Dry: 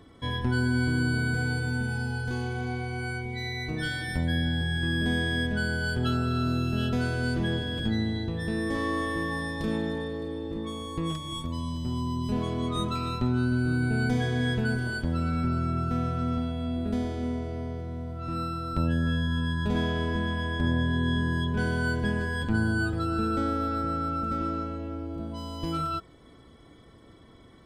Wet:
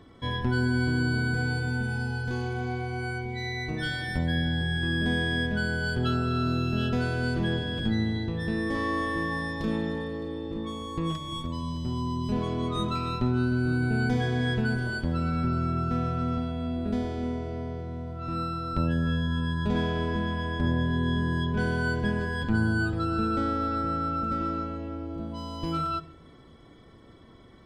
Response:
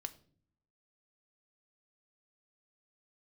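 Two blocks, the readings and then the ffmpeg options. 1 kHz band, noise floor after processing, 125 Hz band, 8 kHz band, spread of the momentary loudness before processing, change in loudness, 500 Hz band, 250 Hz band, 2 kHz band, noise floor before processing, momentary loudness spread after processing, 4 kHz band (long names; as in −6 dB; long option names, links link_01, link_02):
+1.5 dB, −51 dBFS, 0.0 dB, can't be measured, 7 LU, 0.0 dB, +1.0 dB, 0.0 dB, 0.0 dB, −52 dBFS, 7 LU, −0.5 dB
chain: -filter_complex "[0:a]asplit=2[link_01][link_02];[1:a]atrim=start_sample=2205,asetrate=23373,aresample=44100,lowpass=7900[link_03];[link_02][link_03]afir=irnorm=-1:irlink=0,volume=-2dB[link_04];[link_01][link_04]amix=inputs=2:normalize=0,volume=-4.5dB"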